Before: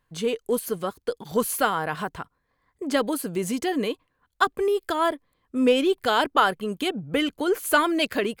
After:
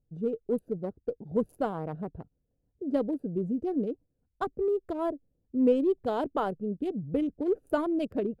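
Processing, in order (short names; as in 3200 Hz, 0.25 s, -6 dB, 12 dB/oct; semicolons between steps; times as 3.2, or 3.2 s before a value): Wiener smoothing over 41 samples; EQ curve 140 Hz 0 dB, 640 Hz -4 dB, 1800 Hz -20 dB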